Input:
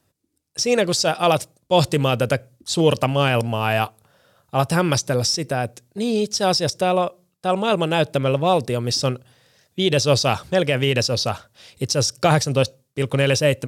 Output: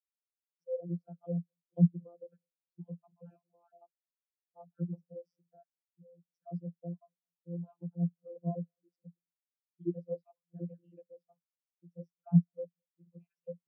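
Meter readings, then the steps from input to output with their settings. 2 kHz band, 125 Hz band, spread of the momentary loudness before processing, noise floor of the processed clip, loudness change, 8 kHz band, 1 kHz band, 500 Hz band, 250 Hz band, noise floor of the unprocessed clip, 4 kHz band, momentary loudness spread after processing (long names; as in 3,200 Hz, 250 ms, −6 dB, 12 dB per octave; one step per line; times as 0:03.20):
below −40 dB, −13.5 dB, 8 LU, below −85 dBFS, −15.5 dB, below −40 dB, below −35 dB, −25.0 dB, −11.5 dB, −69 dBFS, below −40 dB, 22 LU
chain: time-frequency cells dropped at random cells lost 39%
channel vocoder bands 32, saw 172 Hz
delay with a low-pass on its return 211 ms, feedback 57%, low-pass 1,300 Hz, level −23 dB
every bin expanded away from the loudest bin 2.5 to 1
level −8 dB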